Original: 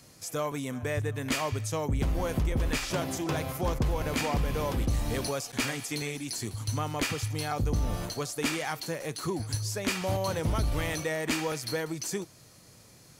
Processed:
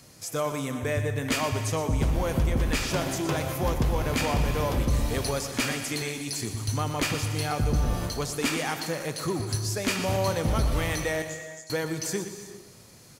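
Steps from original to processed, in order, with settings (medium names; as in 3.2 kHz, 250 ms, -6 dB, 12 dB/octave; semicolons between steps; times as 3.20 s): 11.22–11.70 s: band-pass filter 7 kHz, Q 11; feedback delay 120 ms, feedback 40%, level -11 dB; gated-style reverb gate 420 ms flat, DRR 9.5 dB; trim +2.5 dB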